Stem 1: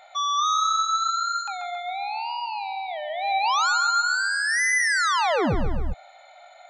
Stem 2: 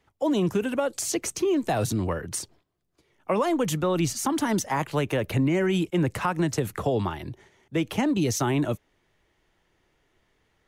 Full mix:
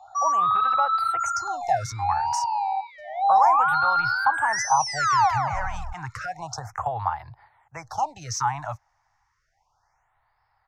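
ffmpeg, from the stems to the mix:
-filter_complex "[0:a]volume=0.422[s0];[1:a]adynamicequalizer=threshold=0.00562:dfrequency=5200:dqfactor=0.7:tfrequency=5200:tqfactor=0.7:attack=5:release=100:ratio=0.375:range=2.5:mode=cutabove:tftype=highshelf,volume=0.631[s1];[s0][s1]amix=inputs=2:normalize=0,firequalizer=gain_entry='entry(120,0);entry(200,-24);entry(380,-22);entry(780,14);entry(3200,-12);entry(5400,10);entry(9800,-11)':delay=0.05:min_phase=1,afftfilt=real='re*(1-between(b*sr/1024,360*pow(7600/360,0.5+0.5*sin(2*PI*0.31*pts/sr))/1.41,360*pow(7600/360,0.5+0.5*sin(2*PI*0.31*pts/sr))*1.41))':imag='im*(1-between(b*sr/1024,360*pow(7600/360,0.5+0.5*sin(2*PI*0.31*pts/sr))/1.41,360*pow(7600/360,0.5+0.5*sin(2*PI*0.31*pts/sr))*1.41))':win_size=1024:overlap=0.75"

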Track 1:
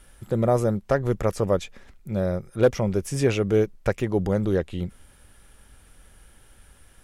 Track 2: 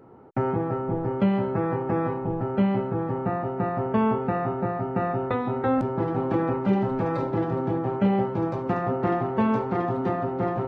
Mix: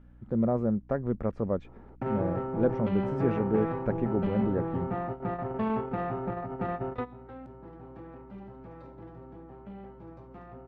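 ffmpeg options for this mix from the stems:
-filter_complex "[0:a]lowpass=1400,equalizer=f=230:t=o:w=0.51:g=10,volume=0.376,asplit=2[s0][s1];[1:a]highshelf=f=6200:g=-5.5,asoftclip=type=tanh:threshold=0.126,adelay=1650,volume=0.596[s2];[s1]apad=whole_len=543644[s3];[s2][s3]sidechaingate=range=0.158:threshold=0.001:ratio=16:detection=peak[s4];[s0][s4]amix=inputs=2:normalize=0,aeval=exprs='val(0)+0.00224*(sin(2*PI*60*n/s)+sin(2*PI*2*60*n/s)/2+sin(2*PI*3*60*n/s)/3+sin(2*PI*4*60*n/s)/4+sin(2*PI*5*60*n/s)/5)':c=same"

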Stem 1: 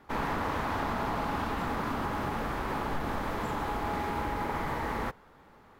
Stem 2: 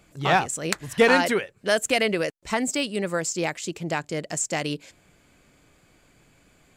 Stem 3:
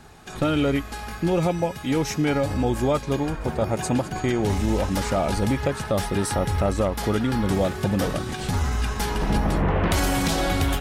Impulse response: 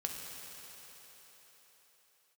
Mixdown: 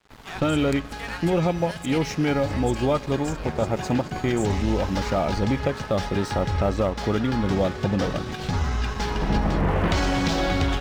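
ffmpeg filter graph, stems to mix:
-filter_complex "[0:a]acrossover=split=230|3000[s0][s1][s2];[s1]acompressor=threshold=0.00251:ratio=2[s3];[s0][s3][s2]amix=inputs=3:normalize=0,volume=0.75[s4];[1:a]highpass=1000,aeval=exprs='val(0)+0.00708*(sin(2*PI*60*n/s)+sin(2*PI*2*60*n/s)/2+sin(2*PI*3*60*n/s)/3+sin(2*PI*4*60*n/s)/4+sin(2*PI*5*60*n/s)/5)':c=same,volume=0.251,asplit=2[s5][s6];[2:a]lowpass=f=6000:w=0.5412,lowpass=f=6000:w=1.3066,lowshelf=f=470:g=2.5,volume=0.891,asplit=2[s7][s8];[s8]volume=0.178[s9];[s6]apad=whole_len=255771[s10];[s4][s10]sidechaincompress=threshold=0.00355:ratio=8:attack=32:release=238[s11];[3:a]atrim=start_sample=2205[s12];[s9][s12]afir=irnorm=-1:irlink=0[s13];[s11][s5][s7][s13]amix=inputs=4:normalize=0,lowshelf=f=400:g=-2.5,aeval=exprs='sgn(val(0))*max(abs(val(0))-0.00794,0)':c=same"

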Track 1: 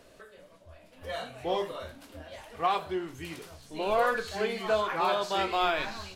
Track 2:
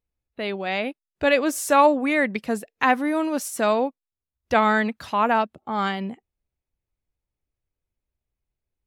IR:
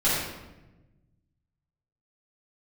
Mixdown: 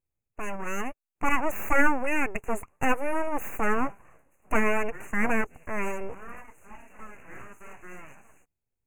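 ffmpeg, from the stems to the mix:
-filter_complex "[0:a]adelay=2300,volume=0.224[s0];[1:a]volume=0.891[s1];[s0][s1]amix=inputs=2:normalize=0,equalizer=f=1500:w=1.5:g=-4,aeval=exprs='abs(val(0))':c=same,asuperstop=centerf=4200:order=20:qfactor=1.2"

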